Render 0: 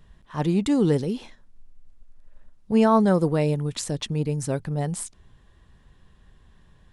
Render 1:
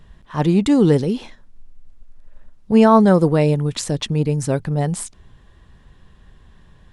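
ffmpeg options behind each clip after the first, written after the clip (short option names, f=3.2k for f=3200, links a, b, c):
-af "highshelf=f=7.9k:g=-5,volume=6.5dB"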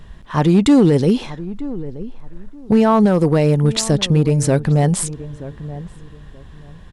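-filter_complex "[0:a]alimiter=limit=-11.5dB:level=0:latency=1:release=176,asoftclip=type=hard:threshold=-13dB,asplit=2[a][b];[b]adelay=927,lowpass=f=990:p=1,volume=-15dB,asplit=2[c][d];[d]adelay=927,lowpass=f=990:p=1,volume=0.24,asplit=2[e][f];[f]adelay=927,lowpass=f=990:p=1,volume=0.24[g];[a][c][e][g]amix=inputs=4:normalize=0,volume=7dB"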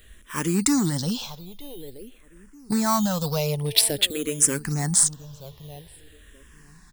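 -filter_complex "[0:a]asplit=2[a][b];[b]acrusher=samples=9:mix=1:aa=0.000001:lfo=1:lforange=9:lforate=0.75,volume=-11dB[c];[a][c]amix=inputs=2:normalize=0,crystalizer=i=9.5:c=0,asplit=2[d][e];[e]afreqshift=-0.49[f];[d][f]amix=inputs=2:normalize=1,volume=-12dB"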